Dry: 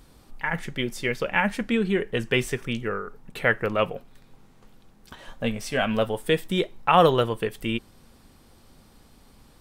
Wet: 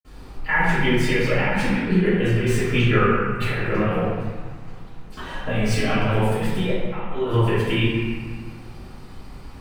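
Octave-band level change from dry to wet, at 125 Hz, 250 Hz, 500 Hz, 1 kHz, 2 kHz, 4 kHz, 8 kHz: +10.5, +6.0, +1.5, −0.5, +4.0, +1.5, +3.0 decibels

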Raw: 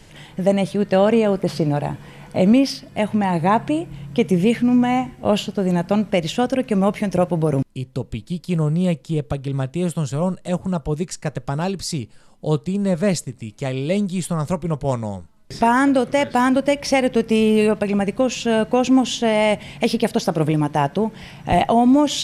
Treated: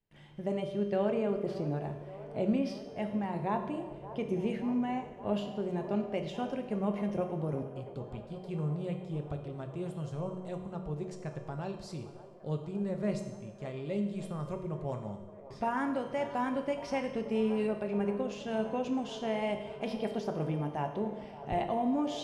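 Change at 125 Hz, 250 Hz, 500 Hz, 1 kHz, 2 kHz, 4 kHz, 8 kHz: −15.0, −15.0, −14.0, −15.0, −17.0, −19.5, −24.5 decibels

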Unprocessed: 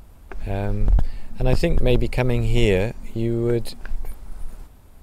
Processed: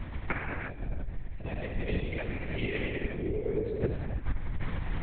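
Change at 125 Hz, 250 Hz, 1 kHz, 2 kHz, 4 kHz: −11.5, −11.0, −8.0, −4.5, −12.5 decibels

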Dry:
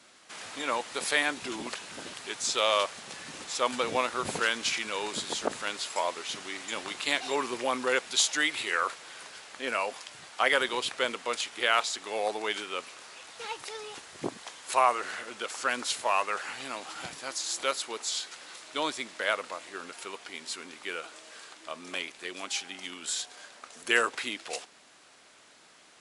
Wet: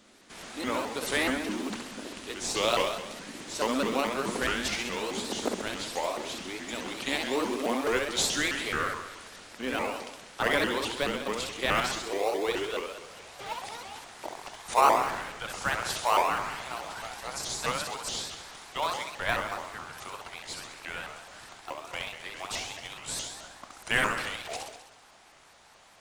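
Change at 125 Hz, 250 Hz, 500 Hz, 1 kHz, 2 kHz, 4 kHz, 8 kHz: +9.0, +6.0, +1.5, +1.5, −1.0, −1.5, −1.5 decibels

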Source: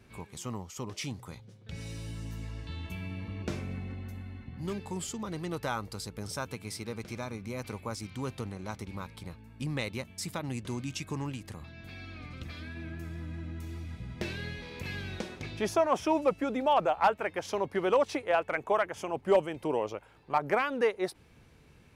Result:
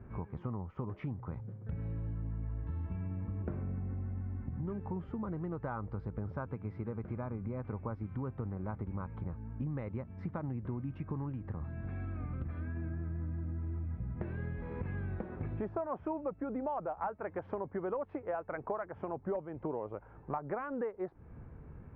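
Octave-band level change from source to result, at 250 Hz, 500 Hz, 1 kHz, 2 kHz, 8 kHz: −3.0 dB, −8.5 dB, −10.0 dB, −13.0 dB, below −35 dB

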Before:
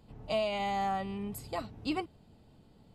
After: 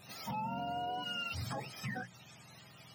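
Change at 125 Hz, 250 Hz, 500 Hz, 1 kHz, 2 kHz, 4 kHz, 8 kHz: +1.0, −8.0, −10.5, −4.5, −0.5, +0.5, 0.0 decibels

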